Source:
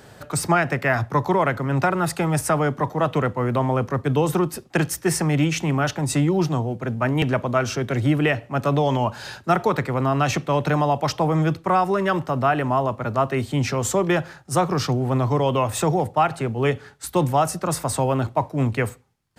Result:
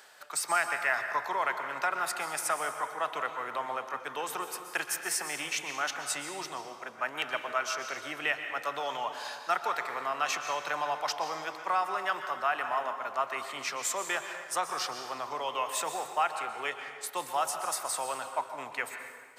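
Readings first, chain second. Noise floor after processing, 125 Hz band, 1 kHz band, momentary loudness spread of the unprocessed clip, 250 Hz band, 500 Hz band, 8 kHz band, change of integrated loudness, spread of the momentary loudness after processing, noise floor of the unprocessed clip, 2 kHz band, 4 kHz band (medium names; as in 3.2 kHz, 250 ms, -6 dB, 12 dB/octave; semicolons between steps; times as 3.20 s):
-46 dBFS, -37.5 dB, -7.5 dB, 4 LU, -26.5 dB, -15.0 dB, -4.5 dB, -10.5 dB, 6 LU, -48 dBFS, -4.5 dB, -4.5 dB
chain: reverse; upward compressor, threshold -35 dBFS; reverse; high-pass 990 Hz 12 dB/octave; plate-style reverb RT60 1.7 s, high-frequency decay 0.7×, pre-delay 110 ms, DRR 6.5 dB; trim -5 dB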